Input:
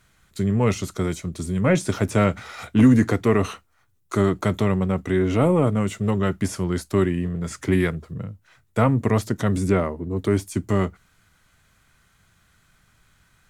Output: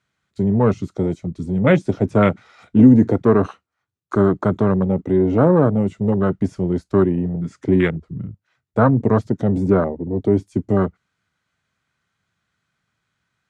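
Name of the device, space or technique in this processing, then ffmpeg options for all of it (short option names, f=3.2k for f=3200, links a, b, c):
over-cleaned archive recording: -af "highpass=110,lowpass=6.1k,afwtdn=0.0501,volume=5dB"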